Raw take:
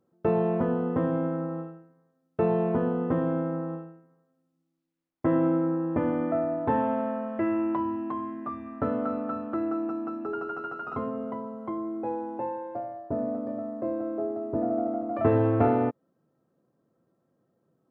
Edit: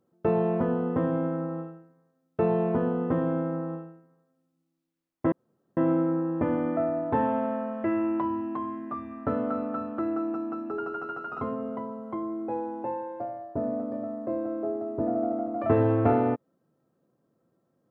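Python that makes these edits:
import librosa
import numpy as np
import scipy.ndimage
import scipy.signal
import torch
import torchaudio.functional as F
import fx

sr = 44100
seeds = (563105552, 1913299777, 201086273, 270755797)

y = fx.edit(x, sr, fx.insert_room_tone(at_s=5.32, length_s=0.45), tone=tone)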